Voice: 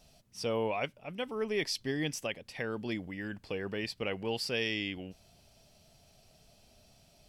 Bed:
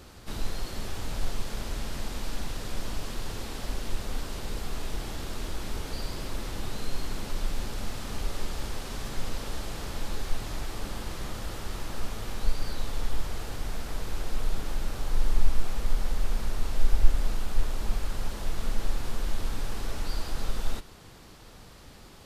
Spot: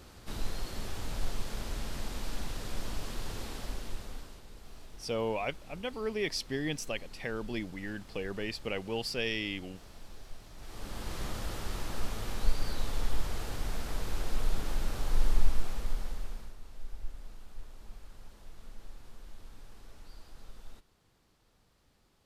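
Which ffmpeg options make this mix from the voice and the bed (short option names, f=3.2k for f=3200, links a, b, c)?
-filter_complex "[0:a]adelay=4650,volume=-0.5dB[a];[1:a]volume=12dB,afade=t=out:st=3.46:d=0.97:silence=0.211349,afade=t=in:st=10.56:d=0.64:silence=0.16788,afade=t=out:st=15.24:d=1.32:silence=0.125893[b];[a][b]amix=inputs=2:normalize=0"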